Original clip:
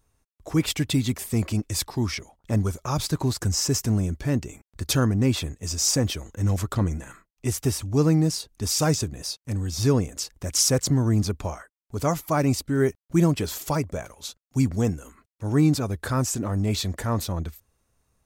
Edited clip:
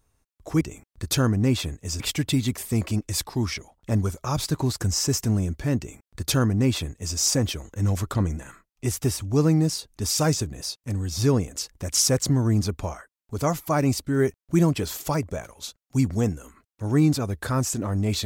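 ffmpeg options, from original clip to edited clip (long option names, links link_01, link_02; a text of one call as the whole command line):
ffmpeg -i in.wav -filter_complex "[0:a]asplit=3[link_01][link_02][link_03];[link_01]atrim=end=0.612[link_04];[link_02]atrim=start=4.388:end=5.782[link_05];[link_03]atrim=start=0.608[link_06];[link_04][link_05]acrossfade=duration=0.004:curve1=hsin:curve2=hsin[link_07];[link_07][link_06]acrossfade=duration=0.004:curve1=hsin:curve2=hsin" out.wav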